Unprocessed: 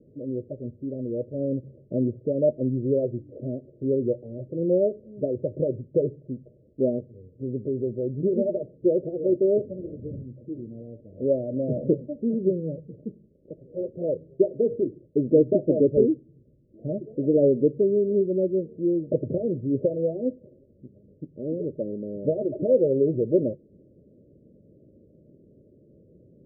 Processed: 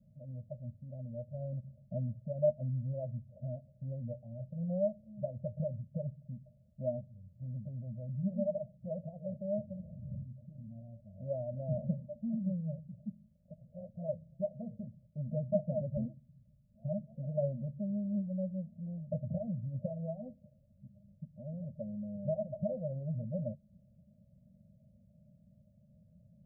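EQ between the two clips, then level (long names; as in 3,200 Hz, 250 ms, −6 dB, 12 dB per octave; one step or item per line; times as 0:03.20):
elliptic band-stop filter 210–630 Hz, stop band 40 dB
−3.5 dB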